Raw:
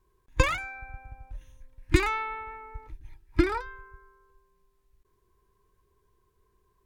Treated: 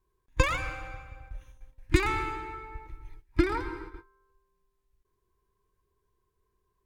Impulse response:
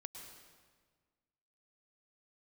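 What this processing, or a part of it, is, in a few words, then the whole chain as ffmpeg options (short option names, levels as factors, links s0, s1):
keyed gated reverb: -filter_complex "[0:a]asplit=3[s0][s1][s2];[1:a]atrim=start_sample=2205[s3];[s1][s3]afir=irnorm=-1:irlink=0[s4];[s2]apad=whole_len=302369[s5];[s4][s5]sidechaingate=range=0.0224:threshold=0.00355:ratio=16:detection=peak,volume=1.78[s6];[s0][s6]amix=inputs=2:normalize=0,volume=0.447"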